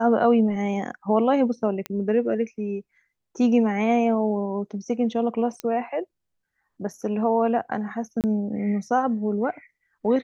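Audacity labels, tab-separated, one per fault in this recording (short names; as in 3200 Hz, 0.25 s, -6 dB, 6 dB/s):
1.860000	1.860000	pop -14 dBFS
5.600000	5.600000	pop -15 dBFS
8.210000	8.240000	gap 28 ms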